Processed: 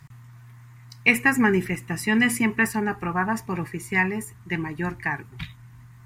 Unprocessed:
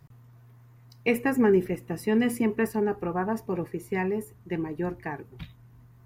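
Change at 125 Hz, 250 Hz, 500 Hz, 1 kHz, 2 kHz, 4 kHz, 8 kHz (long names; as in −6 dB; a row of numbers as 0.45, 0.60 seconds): +4.5, +2.0, −4.0, +5.5, +12.5, +10.0, +11.0 decibels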